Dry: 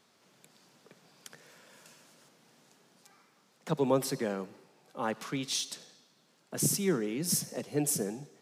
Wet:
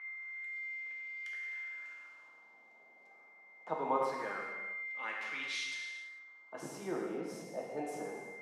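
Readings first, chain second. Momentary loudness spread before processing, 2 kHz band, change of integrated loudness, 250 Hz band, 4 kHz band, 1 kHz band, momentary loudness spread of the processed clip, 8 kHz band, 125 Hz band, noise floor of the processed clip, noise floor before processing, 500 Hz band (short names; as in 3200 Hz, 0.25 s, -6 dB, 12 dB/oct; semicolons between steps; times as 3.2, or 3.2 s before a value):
14 LU, +7.5 dB, -8.0 dB, -11.0 dB, -8.0 dB, +1.5 dB, 21 LU, -19.5 dB, -18.5 dB, -61 dBFS, -68 dBFS, -6.0 dB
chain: whine 2100 Hz -39 dBFS; LFO band-pass sine 0.24 Hz 680–2200 Hz; non-linear reverb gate 0.47 s falling, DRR -2 dB; gain +1 dB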